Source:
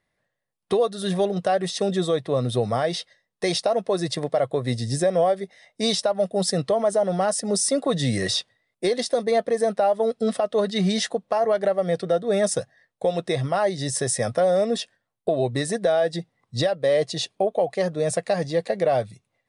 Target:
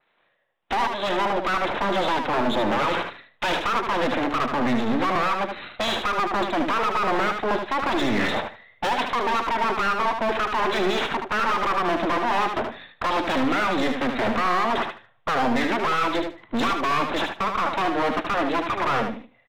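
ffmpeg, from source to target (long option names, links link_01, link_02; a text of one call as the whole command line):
ffmpeg -i in.wav -filter_complex "[0:a]asubboost=boost=10.5:cutoff=79,dynaudnorm=framelen=500:gausssize=9:maxgain=11dB,alimiter=limit=-11dB:level=0:latency=1:release=158,acrossover=split=230[link_01][link_02];[link_02]acompressor=threshold=-19dB:ratio=6[link_03];[link_01][link_03]amix=inputs=2:normalize=0,aresample=8000,aeval=exprs='abs(val(0))':channel_layout=same,aresample=44100,asplit=2[link_04][link_05];[link_05]highpass=frequency=720:poles=1,volume=26dB,asoftclip=type=tanh:threshold=-9dB[link_06];[link_04][link_06]amix=inputs=2:normalize=0,lowpass=frequency=2300:poles=1,volume=-6dB,volume=16.5dB,asoftclip=hard,volume=-16.5dB,asplit=2[link_07][link_08];[link_08]aecho=0:1:76|152|228:0.501|0.1|0.02[link_09];[link_07][link_09]amix=inputs=2:normalize=0,adynamicequalizer=threshold=0.02:dfrequency=3000:dqfactor=0.7:tfrequency=3000:tqfactor=0.7:attack=5:release=100:ratio=0.375:range=2:mode=cutabove:tftype=highshelf,volume=-4dB" out.wav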